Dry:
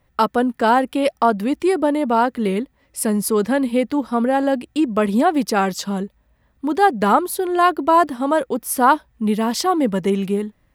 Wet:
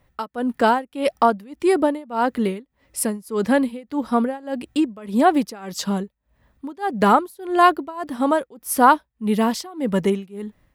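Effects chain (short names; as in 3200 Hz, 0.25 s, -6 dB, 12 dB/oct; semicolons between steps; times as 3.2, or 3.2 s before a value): tremolo 1.7 Hz, depth 94%; gain +1.5 dB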